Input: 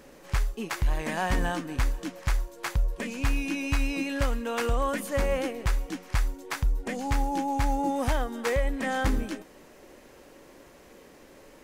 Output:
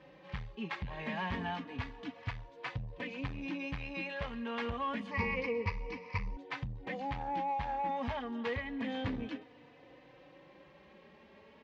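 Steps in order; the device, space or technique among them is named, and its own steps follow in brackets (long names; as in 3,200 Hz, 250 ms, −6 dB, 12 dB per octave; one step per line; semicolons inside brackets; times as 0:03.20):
barber-pole flanger into a guitar amplifier (barber-pole flanger 3.4 ms +0.29 Hz; soft clipping −27 dBFS, distortion −11 dB; loudspeaker in its box 92–3,600 Hz, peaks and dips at 100 Hz +3 dB, 350 Hz −9 dB, 630 Hz −5 dB, 1,400 Hz −7 dB)
0:05.11–0:06.37: EQ curve with evenly spaced ripples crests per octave 0.85, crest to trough 17 dB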